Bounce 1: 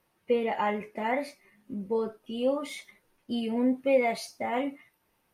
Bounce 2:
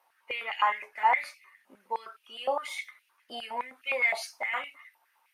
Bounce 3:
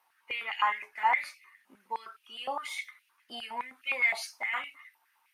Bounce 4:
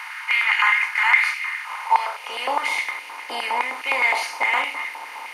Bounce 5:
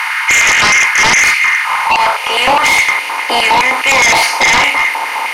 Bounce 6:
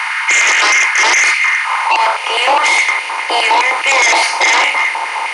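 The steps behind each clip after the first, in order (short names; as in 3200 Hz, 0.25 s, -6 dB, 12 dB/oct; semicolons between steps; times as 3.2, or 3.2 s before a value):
stepped high-pass 9.7 Hz 800–2600 Hz
bell 550 Hz -10 dB 0.81 oct
per-bin compression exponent 0.4; high-pass sweep 1500 Hz -> 330 Hz, 1.56–2.47; gain +3.5 dB
limiter -11.5 dBFS, peak gain reduction 7.5 dB; sine folder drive 8 dB, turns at -11.5 dBFS; gain +6 dB
elliptic high-pass 320 Hz, stop band 40 dB; downsampling 22050 Hz; gain -1 dB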